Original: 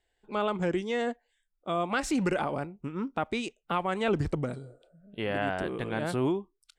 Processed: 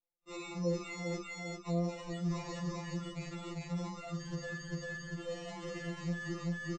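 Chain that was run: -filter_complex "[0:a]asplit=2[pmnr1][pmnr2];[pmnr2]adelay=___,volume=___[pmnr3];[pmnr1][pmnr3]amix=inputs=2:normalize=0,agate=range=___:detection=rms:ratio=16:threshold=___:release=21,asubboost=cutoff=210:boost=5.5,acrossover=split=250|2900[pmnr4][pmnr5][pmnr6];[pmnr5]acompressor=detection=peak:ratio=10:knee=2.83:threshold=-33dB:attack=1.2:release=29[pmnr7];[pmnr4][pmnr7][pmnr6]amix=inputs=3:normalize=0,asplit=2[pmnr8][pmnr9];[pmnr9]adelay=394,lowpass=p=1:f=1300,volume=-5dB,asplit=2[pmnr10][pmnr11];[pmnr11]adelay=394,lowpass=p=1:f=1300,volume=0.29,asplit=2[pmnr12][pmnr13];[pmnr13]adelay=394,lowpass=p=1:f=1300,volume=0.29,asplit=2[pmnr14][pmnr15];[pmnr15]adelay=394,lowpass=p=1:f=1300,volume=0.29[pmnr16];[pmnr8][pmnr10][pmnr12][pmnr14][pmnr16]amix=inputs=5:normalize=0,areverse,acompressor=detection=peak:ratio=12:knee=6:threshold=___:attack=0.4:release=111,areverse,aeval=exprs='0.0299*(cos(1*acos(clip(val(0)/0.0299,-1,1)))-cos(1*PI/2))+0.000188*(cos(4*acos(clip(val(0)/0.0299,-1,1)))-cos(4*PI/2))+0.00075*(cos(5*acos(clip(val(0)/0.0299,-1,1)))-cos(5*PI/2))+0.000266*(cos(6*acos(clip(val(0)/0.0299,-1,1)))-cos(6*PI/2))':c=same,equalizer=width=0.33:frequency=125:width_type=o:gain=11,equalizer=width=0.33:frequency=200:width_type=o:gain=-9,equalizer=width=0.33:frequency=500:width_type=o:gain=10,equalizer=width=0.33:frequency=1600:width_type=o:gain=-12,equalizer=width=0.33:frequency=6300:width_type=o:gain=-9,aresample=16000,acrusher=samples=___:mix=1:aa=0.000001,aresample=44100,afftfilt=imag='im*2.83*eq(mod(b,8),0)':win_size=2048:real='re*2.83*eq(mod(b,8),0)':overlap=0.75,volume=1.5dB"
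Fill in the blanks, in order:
47, -7dB, -25dB, -57dB, -34dB, 10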